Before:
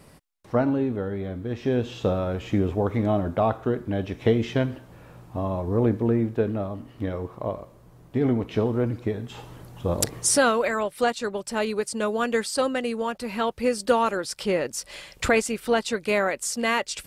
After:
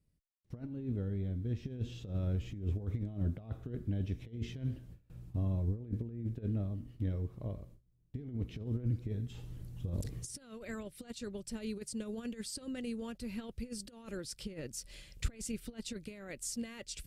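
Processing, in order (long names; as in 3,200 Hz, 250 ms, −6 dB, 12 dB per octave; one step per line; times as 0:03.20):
compressor whose output falls as the input rises −26 dBFS, ratio −0.5
noise gate with hold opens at −34 dBFS
guitar amp tone stack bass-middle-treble 10-0-1
level +6.5 dB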